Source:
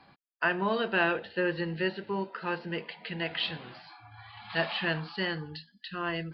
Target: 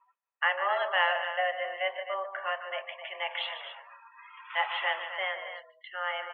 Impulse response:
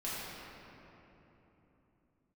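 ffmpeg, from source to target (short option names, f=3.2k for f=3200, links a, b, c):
-af "highpass=f=380:t=q:w=0.5412,highpass=f=380:t=q:w=1.307,lowpass=f=2.9k:t=q:w=0.5176,lowpass=f=2.9k:t=q:w=0.7071,lowpass=f=2.9k:t=q:w=1.932,afreqshift=190,aecho=1:1:148.7|259.5:0.316|0.316,afftdn=nr=26:nf=-50,volume=1dB"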